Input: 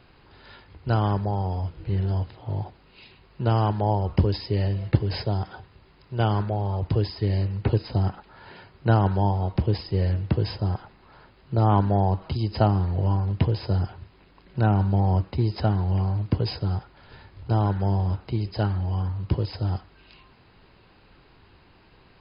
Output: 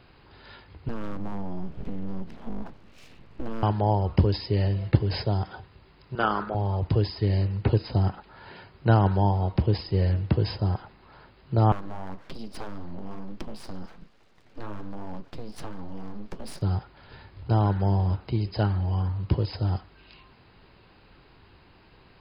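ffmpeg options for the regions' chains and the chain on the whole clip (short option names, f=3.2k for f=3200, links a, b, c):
-filter_complex "[0:a]asettb=1/sr,asplit=3[a][b][c];[a]atrim=end=0.884[d];[b]atrim=start=0.88:end=3.63,asetpts=PTS-STARTPTS,afade=t=in:d=0.004:c=qsin,afade=t=out:st=2.746:d=0.004:c=qsin,bass=f=250:g=8,treble=f=4k:g=-8,acompressor=threshold=-25dB:ratio=16:attack=3.2:release=140:knee=1:detection=peak,aeval=exprs='abs(val(0))':c=same[e];[c]atrim=start=3.626[f];[d][e]acrossfade=d=0.004:c1=hsin:c2=qsin[g];[g][f]acrossfade=d=0.004:c1=qsin:c2=hsin,asettb=1/sr,asplit=3[h][i][j];[h]atrim=end=6.154[k];[i]atrim=start=6.15:end=6.55,asetpts=PTS-STARTPTS,afade=t=in:d=0.004:c=qsin,afade=t=out:st=0.396:d=0.004:c=qsin,highpass=f=180:w=0.5412,highpass=f=180:w=1.3066,equalizer=f=1.3k:t=o:w=0.44:g=15,tremolo=f=250:d=0.519[l];[j]atrim=start=6.546[m];[k][l]acrossfade=d=0.004:c1=hsin:c2=qsin[n];[n][m]acrossfade=d=0.004:c1=qsin:c2=hsin,asettb=1/sr,asplit=3[o][p][q];[o]atrim=end=11.724[r];[p]atrim=start=11.72:end=16.62,asetpts=PTS-STARTPTS,afade=t=in:d=0.004:c=qsin,afade=t=out:st=4.896:d=0.004:c=qsin,aeval=exprs='abs(val(0))':c=same,acompressor=threshold=-28dB:ratio=3:attack=3.2:release=140:knee=1:detection=peak,flanger=delay=2.7:depth=8.6:regen=-51:speed=1.2:shape=triangular[s];[q]atrim=start=16.616[t];[r][s]acrossfade=d=0.004:c1=hsin:c2=qsin[u];[u][t]acrossfade=d=0.004:c1=qsin:c2=hsin"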